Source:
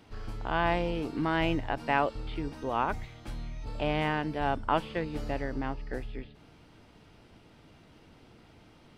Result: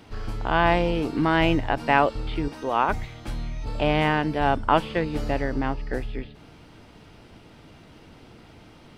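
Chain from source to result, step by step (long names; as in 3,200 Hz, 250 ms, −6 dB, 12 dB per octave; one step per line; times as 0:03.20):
0:02.48–0:02.89: low-shelf EQ 180 Hz −11.5 dB
level +7.5 dB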